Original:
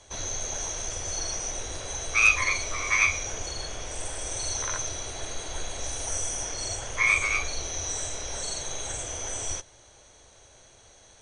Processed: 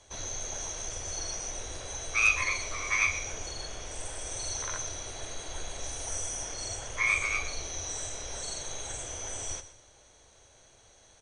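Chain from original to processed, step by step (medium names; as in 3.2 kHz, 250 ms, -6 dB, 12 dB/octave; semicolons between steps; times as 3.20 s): feedback delay 123 ms, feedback 31%, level -14.5 dB; trim -4.5 dB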